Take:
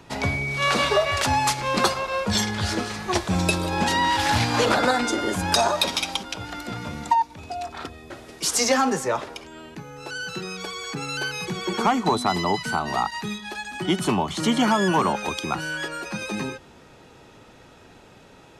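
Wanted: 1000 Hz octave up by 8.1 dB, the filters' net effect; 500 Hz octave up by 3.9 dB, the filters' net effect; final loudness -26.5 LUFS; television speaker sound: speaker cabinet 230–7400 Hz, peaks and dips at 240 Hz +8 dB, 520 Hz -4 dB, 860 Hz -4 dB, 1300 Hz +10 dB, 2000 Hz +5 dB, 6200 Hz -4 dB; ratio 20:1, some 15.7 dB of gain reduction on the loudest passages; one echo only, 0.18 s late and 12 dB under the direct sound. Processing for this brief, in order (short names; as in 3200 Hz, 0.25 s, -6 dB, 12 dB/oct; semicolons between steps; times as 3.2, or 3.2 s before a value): bell 500 Hz +5 dB; bell 1000 Hz +7 dB; compressor 20:1, threshold -23 dBFS; speaker cabinet 230–7400 Hz, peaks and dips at 240 Hz +8 dB, 520 Hz -4 dB, 860 Hz -4 dB, 1300 Hz +10 dB, 2000 Hz +5 dB, 6200 Hz -4 dB; echo 0.18 s -12 dB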